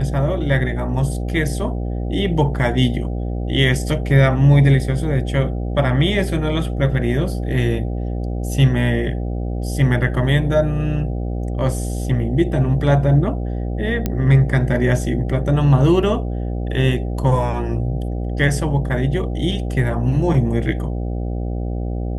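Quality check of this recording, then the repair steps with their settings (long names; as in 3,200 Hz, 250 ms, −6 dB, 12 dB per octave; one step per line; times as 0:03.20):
mains buzz 60 Hz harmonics 13 −23 dBFS
0:14.06: click −7 dBFS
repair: click removal
hum removal 60 Hz, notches 13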